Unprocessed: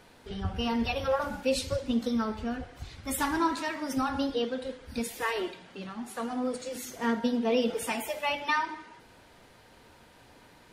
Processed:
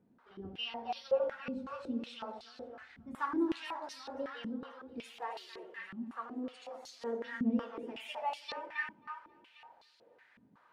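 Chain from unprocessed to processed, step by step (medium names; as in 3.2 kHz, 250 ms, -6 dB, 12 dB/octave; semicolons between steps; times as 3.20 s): flange 0.73 Hz, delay 2 ms, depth 6.9 ms, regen -77%; two-band feedback delay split 730 Hz, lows 82 ms, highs 267 ms, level -5 dB; step-sequenced band-pass 5.4 Hz 210–4400 Hz; trim +4 dB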